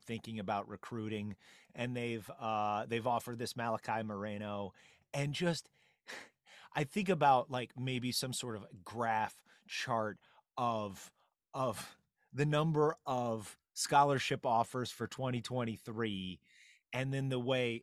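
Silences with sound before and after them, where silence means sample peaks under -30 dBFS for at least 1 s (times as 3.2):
5.53–6.77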